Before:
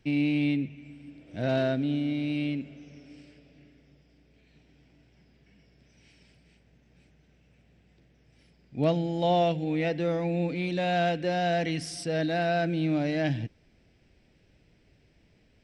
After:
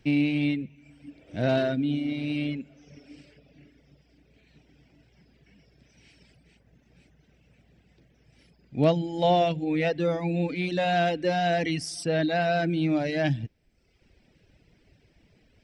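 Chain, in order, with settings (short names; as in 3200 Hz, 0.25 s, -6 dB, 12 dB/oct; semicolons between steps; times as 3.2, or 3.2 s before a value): reverb removal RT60 0.92 s; gain +4 dB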